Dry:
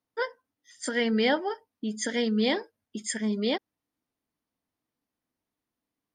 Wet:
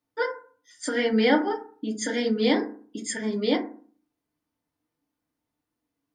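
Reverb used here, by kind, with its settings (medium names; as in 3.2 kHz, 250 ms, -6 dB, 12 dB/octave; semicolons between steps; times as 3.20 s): FDN reverb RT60 0.45 s, low-frequency decay 1.25×, high-frequency decay 0.35×, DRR 1 dB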